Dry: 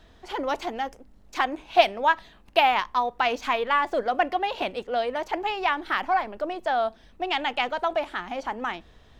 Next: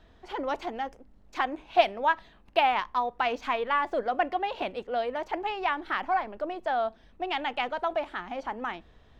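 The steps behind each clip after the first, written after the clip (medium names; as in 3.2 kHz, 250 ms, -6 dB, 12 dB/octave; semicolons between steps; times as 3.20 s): treble shelf 4.7 kHz -10 dB; trim -3 dB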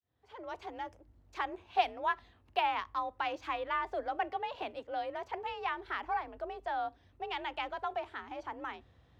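fade-in on the opening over 0.85 s; frequency shift +49 Hz; trim -7.5 dB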